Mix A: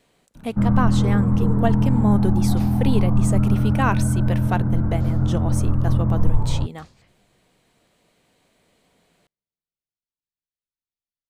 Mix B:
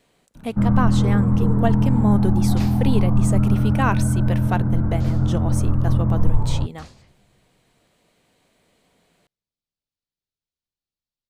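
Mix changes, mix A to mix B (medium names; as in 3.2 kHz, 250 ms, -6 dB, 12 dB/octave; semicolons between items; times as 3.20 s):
first sound: send +6.0 dB; second sound +8.0 dB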